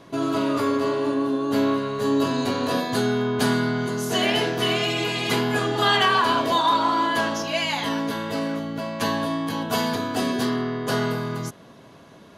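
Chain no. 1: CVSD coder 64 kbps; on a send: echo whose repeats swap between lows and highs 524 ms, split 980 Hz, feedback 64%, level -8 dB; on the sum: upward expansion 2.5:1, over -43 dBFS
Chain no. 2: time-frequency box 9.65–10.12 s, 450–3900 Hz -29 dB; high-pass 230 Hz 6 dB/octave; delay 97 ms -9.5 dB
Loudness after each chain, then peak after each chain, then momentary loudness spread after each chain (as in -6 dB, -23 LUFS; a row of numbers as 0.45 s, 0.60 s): -28.0 LUFS, -23.5 LUFS; -9.0 dBFS, -6.5 dBFS; 15 LU, 8 LU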